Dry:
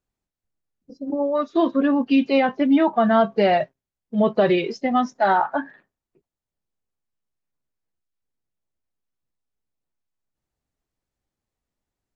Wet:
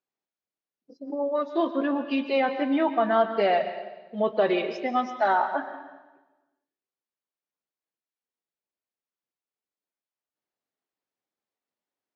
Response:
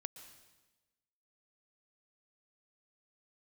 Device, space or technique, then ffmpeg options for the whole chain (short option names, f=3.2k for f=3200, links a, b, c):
supermarket ceiling speaker: -filter_complex "[0:a]highpass=320,lowpass=5.1k[a];[1:a]atrim=start_sample=2205[b];[a][b]afir=irnorm=-1:irlink=0"